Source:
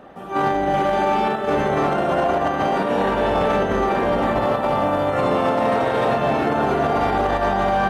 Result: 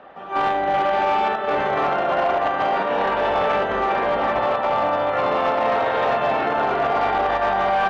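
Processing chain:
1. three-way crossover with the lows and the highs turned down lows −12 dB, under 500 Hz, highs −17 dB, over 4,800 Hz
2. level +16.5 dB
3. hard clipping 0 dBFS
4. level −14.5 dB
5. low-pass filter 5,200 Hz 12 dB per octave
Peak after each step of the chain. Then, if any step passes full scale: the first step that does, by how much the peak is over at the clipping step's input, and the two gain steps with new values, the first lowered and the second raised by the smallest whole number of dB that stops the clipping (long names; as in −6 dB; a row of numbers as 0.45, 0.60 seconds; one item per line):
−10.0, +6.5, 0.0, −14.5, −14.0 dBFS
step 2, 6.5 dB
step 2 +9.5 dB, step 4 −7.5 dB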